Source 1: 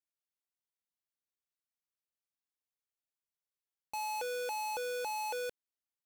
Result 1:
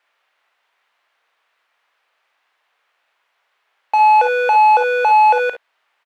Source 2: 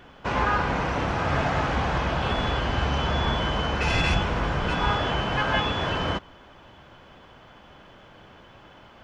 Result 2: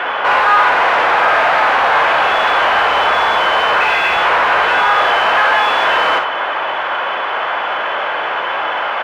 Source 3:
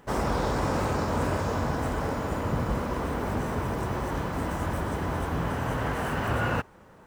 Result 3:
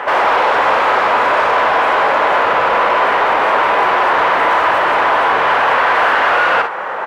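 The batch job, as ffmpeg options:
ffmpeg -i in.wav -filter_complex "[0:a]asplit=2[link_01][link_02];[link_02]highpass=frequency=720:poles=1,volume=37dB,asoftclip=type=tanh:threshold=-10dB[link_03];[link_01][link_03]amix=inputs=2:normalize=0,lowpass=frequency=3600:poles=1,volume=-6dB,asplit=2[link_04][link_05];[link_05]alimiter=limit=-19.5dB:level=0:latency=1:release=325,volume=-2.5dB[link_06];[link_04][link_06]amix=inputs=2:normalize=0,acrossover=split=470 3000:gain=0.0891 1 0.0891[link_07][link_08][link_09];[link_07][link_08][link_09]amix=inputs=3:normalize=0,aecho=1:1:39|56|69:0.251|0.355|0.211,volume=2.5dB" out.wav

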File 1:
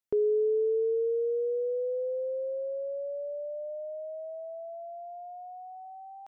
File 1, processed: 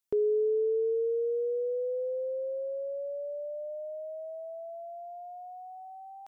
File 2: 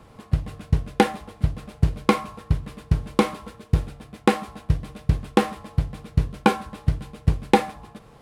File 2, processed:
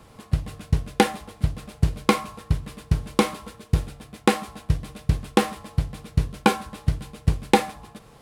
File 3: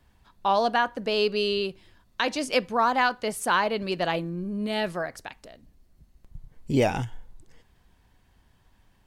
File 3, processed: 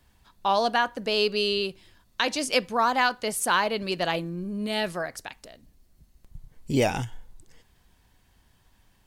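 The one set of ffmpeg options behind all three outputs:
ffmpeg -i in.wav -af "highshelf=frequency=3400:gain=7.5,volume=-1dB" out.wav

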